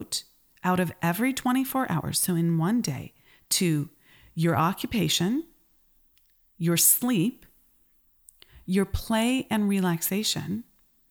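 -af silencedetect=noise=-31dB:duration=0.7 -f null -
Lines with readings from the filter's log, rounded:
silence_start: 5.40
silence_end: 6.61 | silence_duration: 1.20
silence_start: 7.30
silence_end: 8.29 | silence_duration: 0.99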